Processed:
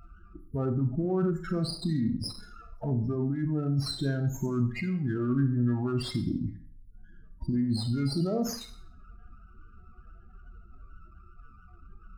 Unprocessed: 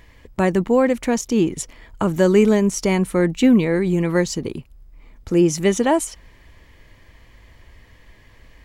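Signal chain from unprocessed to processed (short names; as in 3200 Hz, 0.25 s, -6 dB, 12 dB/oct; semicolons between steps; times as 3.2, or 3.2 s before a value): negative-ratio compressor -21 dBFS, ratio -1; limiter -15 dBFS, peak gain reduction 8 dB; loudest bins only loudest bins 16; varispeed -29%; Schroeder reverb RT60 0.49 s, combs from 29 ms, DRR 6 dB; running maximum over 3 samples; gain -5 dB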